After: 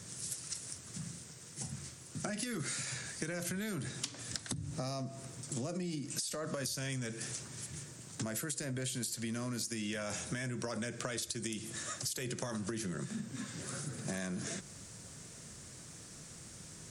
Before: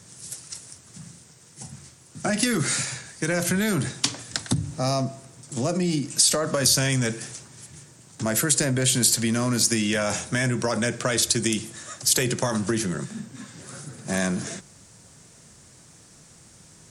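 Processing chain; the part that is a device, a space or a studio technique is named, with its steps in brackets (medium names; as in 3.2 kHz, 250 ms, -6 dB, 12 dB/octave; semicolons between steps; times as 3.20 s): peaking EQ 850 Hz -4 dB 0.58 oct; serial compression, peaks first (compression, threshold -31 dBFS, peak gain reduction 15.5 dB; compression 2:1, threshold -39 dBFS, peak gain reduction 7 dB)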